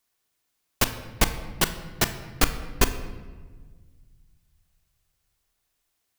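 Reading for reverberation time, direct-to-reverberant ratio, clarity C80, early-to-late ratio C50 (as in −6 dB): 1.5 s, 8.0 dB, 12.5 dB, 11.0 dB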